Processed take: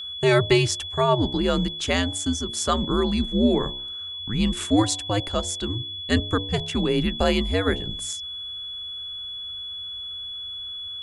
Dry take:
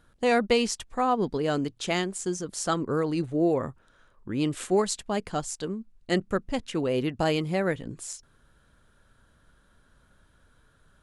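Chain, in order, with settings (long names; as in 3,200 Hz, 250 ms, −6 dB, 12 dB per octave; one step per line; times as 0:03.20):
hum removal 65.08 Hz, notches 17
frequency shifter −100 Hz
steady tone 3,400 Hz −36 dBFS
level +4.5 dB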